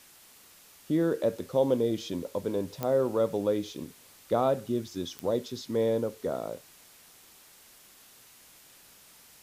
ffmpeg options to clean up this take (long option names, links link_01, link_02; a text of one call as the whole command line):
ffmpeg -i in.wav -af "adeclick=threshold=4,afwtdn=0.002" out.wav